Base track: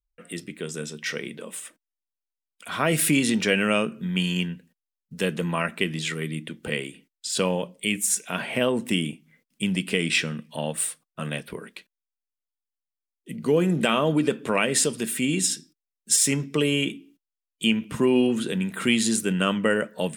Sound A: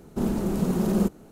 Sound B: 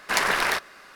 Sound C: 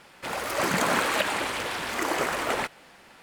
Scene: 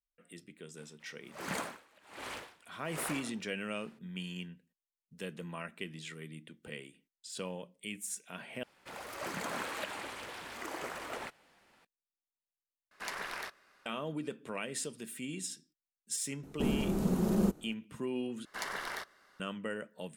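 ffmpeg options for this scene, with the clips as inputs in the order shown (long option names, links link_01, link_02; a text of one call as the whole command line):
ffmpeg -i bed.wav -i cue0.wav -i cue1.wav -i cue2.wav -filter_complex "[3:a]asplit=2[link_01][link_02];[2:a]asplit=2[link_03][link_04];[0:a]volume=-16.5dB[link_05];[link_01]aeval=exprs='val(0)*pow(10,-30*(0.5-0.5*cos(2*PI*1.3*n/s))/20)':channel_layout=same[link_06];[link_04]bandreject=frequency=2500:width=6.6[link_07];[link_05]asplit=4[link_08][link_09][link_10][link_11];[link_08]atrim=end=8.634[link_12];[link_02]atrim=end=3.22,asetpts=PTS-STARTPTS,volume=-14dB[link_13];[link_09]atrim=start=11.846:end=12.914[link_14];[link_03]atrim=end=0.95,asetpts=PTS-STARTPTS,volume=-17.5dB[link_15];[link_10]atrim=start=13.856:end=18.454[link_16];[link_07]atrim=end=0.95,asetpts=PTS-STARTPTS,volume=-16dB[link_17];[link_11]atrim=start=19.396[link_18];[link_06]atrim=end=3.22,asetpts=PTS-STARTPTS,volume=-11dB,afade=type=in:duration=0.004:curve=hsin,afade=type=out:start_time=3.216:duration=0.004:curve=hsin,adelay=770[link_19];[1:a]atrim=end=1.31,asetpts=PTS-STARTPTS,volume=-6dB,afade=type=in:duration=0.004:curve=hsin,afade=type=out:start_time=1.306:duration=0.004:curve=hsin,adelay=16430[link_20];[link_12][link_13]acrossfade=duration=0.004:curve1=hsin:curve2=hsin[link_21];[link_21][link_14]acrossfade=duration=0.004:curve1=hsin:curve2=hsin[link_22];[link_22][link_15]acrossfade=duration=0.004:curve1=hsin:curve2=hsin[link_23];[link_23][link_16]acrossfade=duration=0.004:curve1=hsin:curve2=hsin[link_24];[link_24][link_17]acrossfade=duration=0.004:curve1=hsin:curve2=hsin[link_25];[link_25][link_18]acrossfade=duration=0.004:curve1=hsin:curve2=hsin[link_26];[link_26][link_19][link_20]amix=inputs=3:normalize=0" out.wav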